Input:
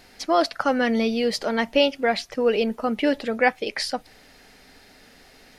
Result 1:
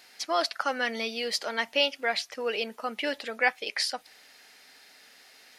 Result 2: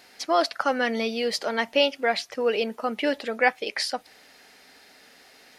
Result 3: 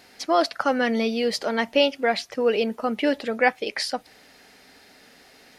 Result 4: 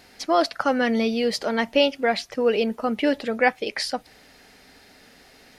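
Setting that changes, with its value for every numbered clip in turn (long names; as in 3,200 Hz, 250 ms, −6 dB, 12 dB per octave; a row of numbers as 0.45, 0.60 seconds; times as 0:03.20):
high-pass filter, corner frequency: 1,500, 490, 180, 51 Hertz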